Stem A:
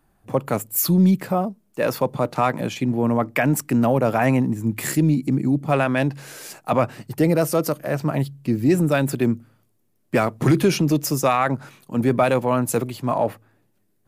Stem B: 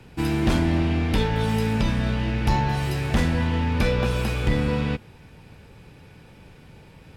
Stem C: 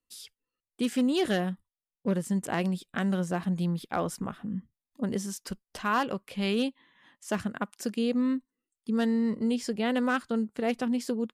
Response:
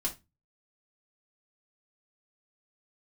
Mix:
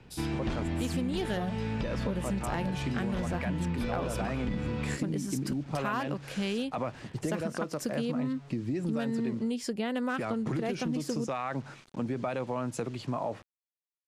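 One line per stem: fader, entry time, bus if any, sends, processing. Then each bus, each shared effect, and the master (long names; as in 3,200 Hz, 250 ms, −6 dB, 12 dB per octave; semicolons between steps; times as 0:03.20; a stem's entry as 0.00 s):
−3.5 dB, 0.05 s, bus A, no send, downward compressor 2.5 to 1, threshold −25 dBFS, peak gain reduction 9 dB; bit reduction 8 bits
−6.5 dB, 0.00 s, bus A, no send, no processing
+1.0 dB, 0.00 s, no bus, no send, no processing
bus A: 0.0 dB, Bessel low-pass filter 5,800 Hz, order 4; brickwall limiter −20 dBFS, peak gain reduction 6.5 dB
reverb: not used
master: downward compressor, threshold −28 dBFS, peak gain reduction 9 dB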